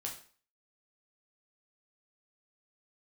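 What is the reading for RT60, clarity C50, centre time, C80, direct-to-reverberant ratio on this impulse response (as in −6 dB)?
0.45 s, 8.0 dB, 22 ms, 12.5 dB, −1.0 dB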